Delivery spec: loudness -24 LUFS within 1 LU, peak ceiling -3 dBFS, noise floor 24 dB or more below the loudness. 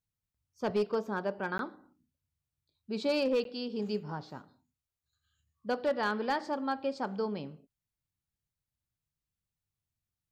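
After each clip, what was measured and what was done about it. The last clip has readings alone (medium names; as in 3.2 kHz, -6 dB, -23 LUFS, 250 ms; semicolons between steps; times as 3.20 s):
clipped samples 0.4%; clipping level -23.0 dBFS; dropouts 2; longest dropout 12 ms; loudness -33.5 LUFS; peak level -23.0 dBFS; loudness target -24.0 LUFS
-> clip repair -23 dBFS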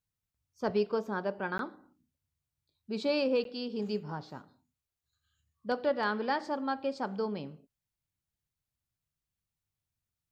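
clipped samples 0.0%; dropouts 2; longest dropout 12 ms
-> interpolate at 1.58/3.44 s, 12 ms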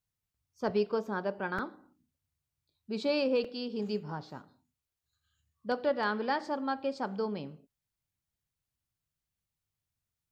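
dropouts 0; loudness -33.5 LUFS; peak level -17.5 dBFS; loudness target -24.0 LUFS
-> trim +9.5 dB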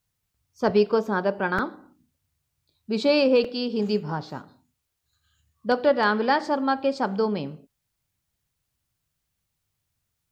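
loudness -24.0 LUFS; peak level -8.0 dBFS; noise floor -79 dBFS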